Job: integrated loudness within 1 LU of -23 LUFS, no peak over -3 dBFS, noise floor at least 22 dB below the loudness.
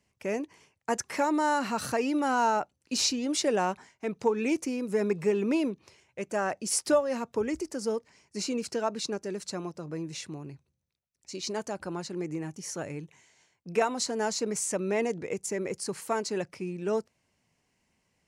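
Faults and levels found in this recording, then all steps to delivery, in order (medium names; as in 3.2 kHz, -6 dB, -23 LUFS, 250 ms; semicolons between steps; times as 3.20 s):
loudness -30.5 LUFS; peak level -13.5 dBFS; loudness target -23.0 LUFS
-> trim +7.5 dB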